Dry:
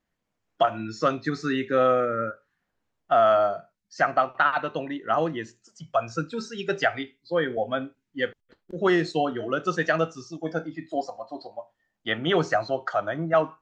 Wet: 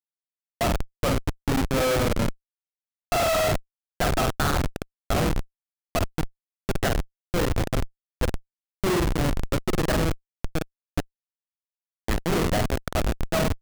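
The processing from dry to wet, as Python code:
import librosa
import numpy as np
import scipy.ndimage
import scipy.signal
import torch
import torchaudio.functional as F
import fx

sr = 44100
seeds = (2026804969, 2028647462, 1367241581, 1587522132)

y = fx.room_flutter(x, sr, wall_m=8.4, rt60_s=0.72)
y = fx.schmitt(y, sr, flips_db=-19.0)
y = F.gain(torch.from_numpy(y), 2.5).numpy()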